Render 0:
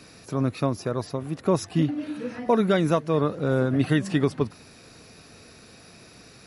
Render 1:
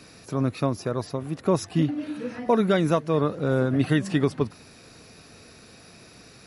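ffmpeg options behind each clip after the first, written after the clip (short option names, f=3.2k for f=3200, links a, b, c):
-af anull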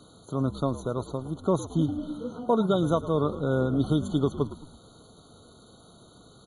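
-filter_complex "[0:a]asplit=5[a][b][c][d][e];[b]adelay=109,afreqshift=-63,volume=-15dB[f];[c]adelay=218,afreqshift=-126,volume=-21.7dB[g];[d]adelay=327,afreqshift=-189,volume=-28.5dB[h];[e]adelay=436,afreqshift=-252,volume=-35.2dB[i];[a][f][g][h][i]amix=inputs=5:normalize=0,afftfilt=real='re*eq(mod(floor(b*sr/1024/1500),2),0)':imag='im*eq(mod(floor(b*sr/1024/1500),2),0)':win_size=1024:overlap=0.75,volume=-2.5dB"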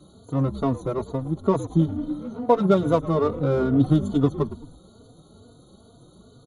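-filter_complex "[0:a]asplit=2[a][b];[b]adynamicsmooth=sensitivity=3.5:basefreq=720,volume=2.5dB[c];[a][c]amix=inputs=2:normalize=0,asplit=2[d][e];[e]adelay=3.4,afreqshift=2.3[f];[d][f]amix=inputs=2:normalize=1"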